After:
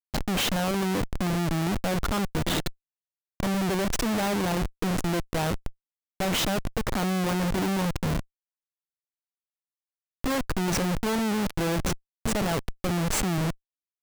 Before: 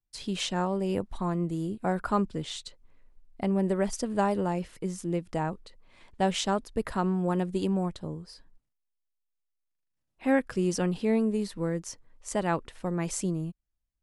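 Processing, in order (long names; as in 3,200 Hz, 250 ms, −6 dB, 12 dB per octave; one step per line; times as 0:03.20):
slap from a distant wall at 180 metres, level −19 dB
comparator with hysteresis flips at −35.5 dBFS
level +5.5 dB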